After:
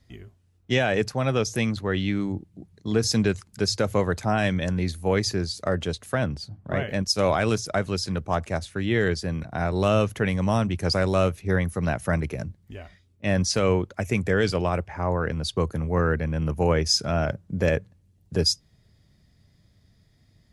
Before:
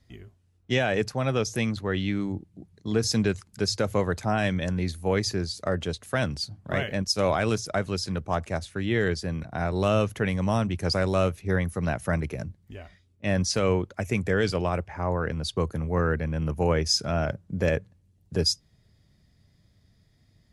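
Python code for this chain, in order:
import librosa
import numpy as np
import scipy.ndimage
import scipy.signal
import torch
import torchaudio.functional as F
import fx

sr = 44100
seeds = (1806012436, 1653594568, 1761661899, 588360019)

y = fx.high_shelf(x, sr, hz=2400.0, db=-11.0, at=(6.15, 6.89))
y = y * librosa.db_to_amplitude(2.0)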